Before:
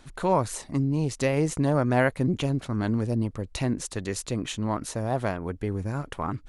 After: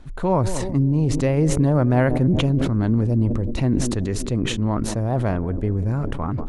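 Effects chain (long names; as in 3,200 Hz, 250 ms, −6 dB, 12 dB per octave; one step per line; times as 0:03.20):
spectral tilt −2.5 dB per octave
on a send: feedback echo with a band-pass in the loop 187 ms, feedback 78%, band-pass 320 Hz, level −15.5 dB
on the sum: level that may fall only so fast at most 25 dB per second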